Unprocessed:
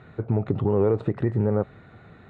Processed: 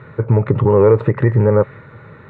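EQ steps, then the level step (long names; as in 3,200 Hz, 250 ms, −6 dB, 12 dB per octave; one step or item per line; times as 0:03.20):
octave-band graphic EQ 125/500/1,000/2,000 Hz +12/+10/+10/+8 dB
dynamic equaliser 2,100 Hz, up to +5 dB, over −37 dBFS, Q 1.1
Butterworth band-reject 720 Hz, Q 3.8
0.0 dB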